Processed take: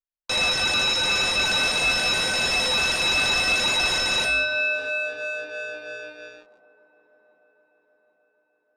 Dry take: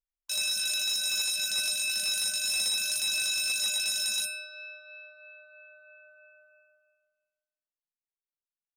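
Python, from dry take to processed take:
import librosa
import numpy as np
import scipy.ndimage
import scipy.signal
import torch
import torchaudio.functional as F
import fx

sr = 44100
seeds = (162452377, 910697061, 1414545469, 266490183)

y = fx.crossing_spikes(x, sr, level_db=-27.0, at=(1.46, 3.98))
y = fx.low_shelf(y, sr, hz=250.0, db=-7.5)
y = fx.leveller(y, sr, passes=5)
y = scipy.signal.sosfilt(scipy.signal.butter(2, 4600.0, 'lowpass', fs=sr, output='sos'), y)
y = fx.high_shelf(y, sr, hz=2200.0, db=-9.0)
y = fx.echo_wet_bandpass(y, sr, ms=783, feedback_pct=53, hz=490.0, wet_db=-19.0)
y = y * librosa.db_to_amplitude(7.5)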